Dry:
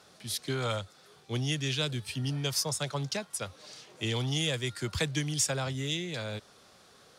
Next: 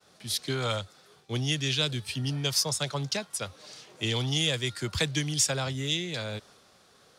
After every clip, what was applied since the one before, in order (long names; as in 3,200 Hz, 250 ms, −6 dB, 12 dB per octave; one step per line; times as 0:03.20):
downward expander −54 dBFS
dynamic equaliser 4,100 Hz, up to +4 dB, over −42 dBFS, Q 0.97
level +1.5 dB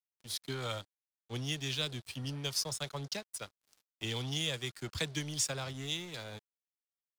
dead-zone distortion −41 dBFS
level −6.5 dB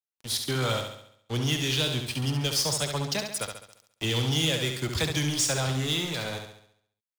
leveller curve on the samples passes 3
on a send: flutter between parallel walls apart 11.8 metres, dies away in 0.68 s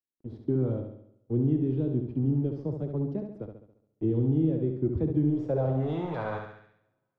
low-pass filter sweep 330 Hz → 1,700 Hz, 0:05.21–0:06.70
coupled-rooms reverb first 0.4 s, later 2.2 s, from −19 dB, DRR 19.5 dB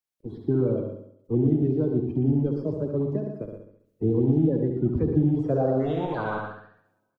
spectral magnitudes quantised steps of 30 dB
single-tap delay 117 ms −7.5 dB
level +4 dB